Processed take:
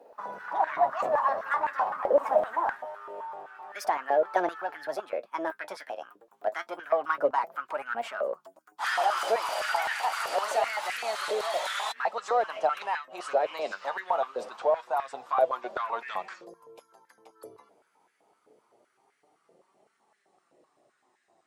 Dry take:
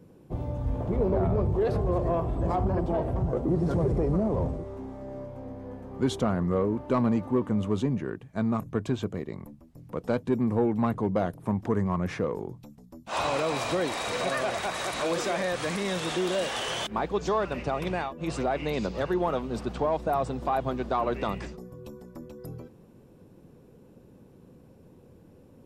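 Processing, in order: gliding tape speed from 169% -> 70%; flange 0.25 Hz, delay 4.2 ms, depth 6.9 ms, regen +50%; step-sequenced high-pass 7.8 Hz 540–1700 Hz

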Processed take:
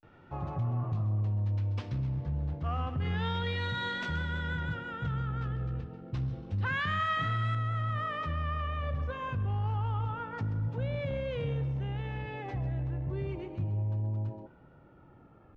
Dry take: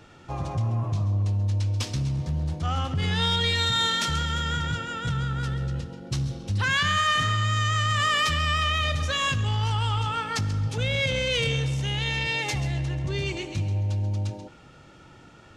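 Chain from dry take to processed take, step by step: low-pass 1.9 kHz 12 dB/octave, from 7.55 s 1.1 kHz; vibrato 0.3 Hz 90 cents; trim -5.5 dB

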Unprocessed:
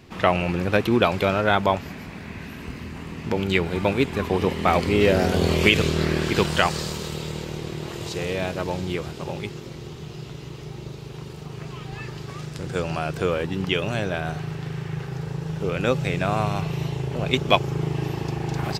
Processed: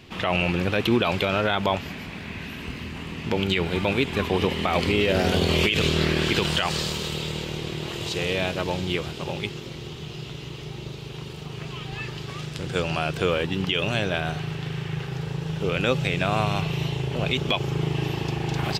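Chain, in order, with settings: peaking EQ 3.1 kHz +8 dB 0.89 oct; peak limiter -10.5 dBFS, peak gain reduction 14 dB

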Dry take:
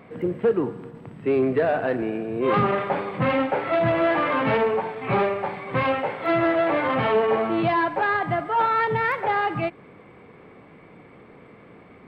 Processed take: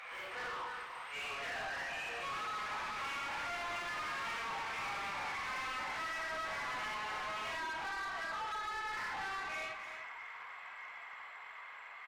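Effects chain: phase randomisation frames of 200 ms; Doppler pass-by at 4.99 s, 19 m/s, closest 24 m; high-pass 920 Hz 24 dB/octave; treble shelf 3.8 kHz +9 dB; compression 4:1, threshold -47 dBFS, peak gain reduction 19.5 dB; overdrive pedal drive 25 dB, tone 3.2 kHz, clips at -34 dBFS; saturation -36.5 dBFS, distortion -24 dB; delay 297 ms -9 dB; trim +1.5 dB

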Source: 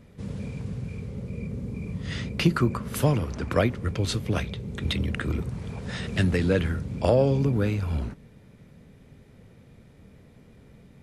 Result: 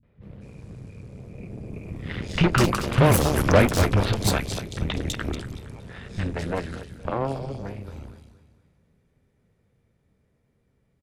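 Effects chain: Doppler pass-by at 3.36 s, 7 m/s, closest 5.3 m; on a send: feedback delay 233 ms, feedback 41%, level -11 dB; on the sum: Chebyshev shaper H 6 -12 dB, 7 -26 dB, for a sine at -16.5 dBFS; three bands offset in time lows, mids, highs 30/230 ms, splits 220/3500 Hz; trim +7.5 dB

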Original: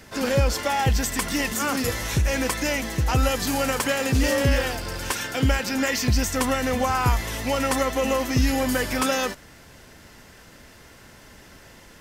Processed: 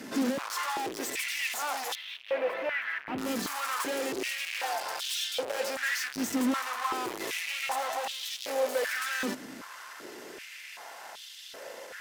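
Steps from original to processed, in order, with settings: valve stage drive 37 dB, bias 0.4; 1.95–3.18 s: FFT filter 2.6 kHz 0 dB, 7.1 kHz -29 dB, 14 kHz -22 dB; step-sequenced high-pass 2.6 Hz 250–3400 Hz; trim +3.5 dB

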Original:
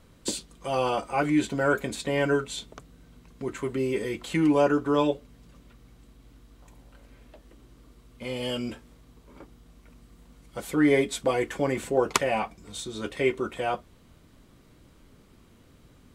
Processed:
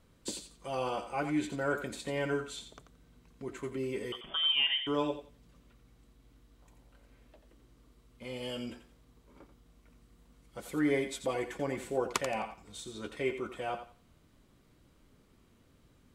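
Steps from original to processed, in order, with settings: 4.12–4.87 s: frequency inversion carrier 3.4 kHz; on a send: thinning echo 87 ms, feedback 24%, level -9 dB; on the sum: trim -8.5 dB

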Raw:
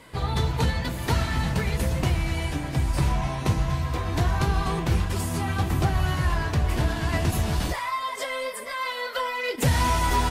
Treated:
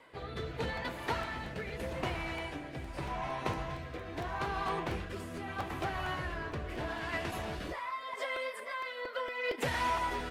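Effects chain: tone controls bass -15 dB, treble -13 dB; rotary cabinet horn 0.8 Hz; crackling interface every 0.23 s, samples 128, repeat, from 0.77 s; trim -3 dB

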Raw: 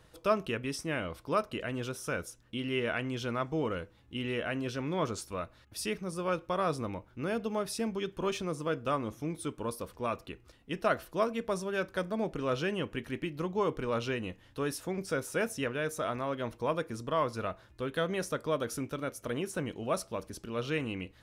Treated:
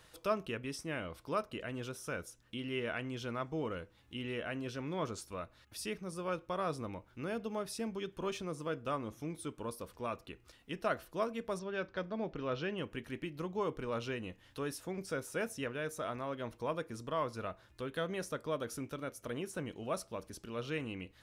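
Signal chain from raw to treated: 11.59–12.78 s: low-pass 5.2 kHz 24 dB/octave; tape noise reduction on one side only encoder only; trim -5.5 dB

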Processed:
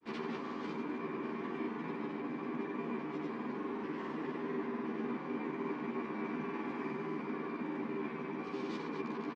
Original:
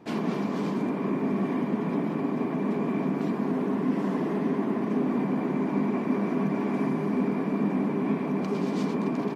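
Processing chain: peaking EQ 640 Hz -11 dB 0.53 oct; on a send: delay 1166 ms -16 dB; on the sum: granulator, pitch spread up and down by 0 st; low-pass 4.2 kHz 12 dB/octave; peaking EQ 160 Hz -13 dB 1.5 oct; doubling 13 ms -2 dB; trim -5.5 dB

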